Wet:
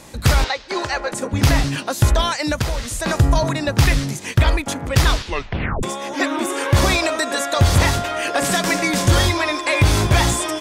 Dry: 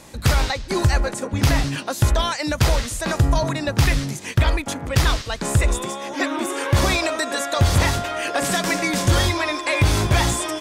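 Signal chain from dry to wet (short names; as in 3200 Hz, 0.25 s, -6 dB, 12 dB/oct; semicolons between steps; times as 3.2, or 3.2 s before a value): 0.44–1.12 three-band isolator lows -21 dB, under 350 Hz, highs -20 dB, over 6300 Hz; 2.54–3.05 compressor 6:1, threshold -21 dBFS, peak gain reduction 8.5 dB; 5.13 tape stop 0.70 s; gain +2.5 dB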